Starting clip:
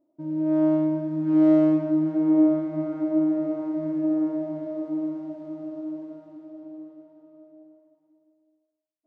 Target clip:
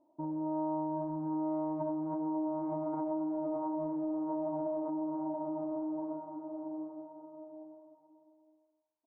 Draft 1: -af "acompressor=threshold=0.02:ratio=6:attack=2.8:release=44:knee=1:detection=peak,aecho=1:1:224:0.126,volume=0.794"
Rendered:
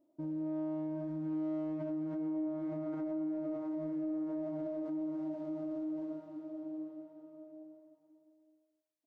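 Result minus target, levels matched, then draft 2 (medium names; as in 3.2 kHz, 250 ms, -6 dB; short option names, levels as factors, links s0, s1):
1 kHz band -13.0 dB
-af "acompressor=threshold=0.02:ratio=6:attack=2.8:release=44:knee=1:detection=peak,lowpass=f=930:t=q:w=8,aecho=1:1:224:0.126,volume=0.794"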